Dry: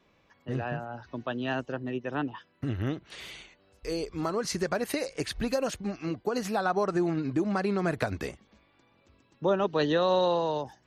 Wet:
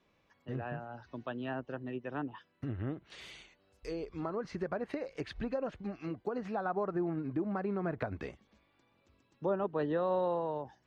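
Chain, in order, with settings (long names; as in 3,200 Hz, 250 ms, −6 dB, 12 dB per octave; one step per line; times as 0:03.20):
treble cut that deepens with the level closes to 1,500 Hz, closed at −26 dBFS
level −6.5 dB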